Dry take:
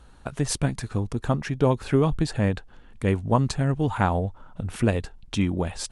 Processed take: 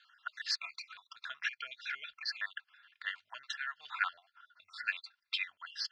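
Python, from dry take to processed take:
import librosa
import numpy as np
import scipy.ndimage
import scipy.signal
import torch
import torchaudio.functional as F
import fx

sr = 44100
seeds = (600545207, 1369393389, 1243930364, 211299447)

y = fx.spec_dropout(x, sr, seeds[0], share_pct=47)
y = scipy.signal.sosfilt(scipy.signal.ellip(3, 1.0, 60, [1400.0, 4900.0], 'bandpass', fs=sr, output='sos'), y)
y = y + 0.47 * np.pad(y, (int(2.9 * sr / 1000.0), 0))[:len(y)]
y = y * 10.0 ** (1.0 / 20.0)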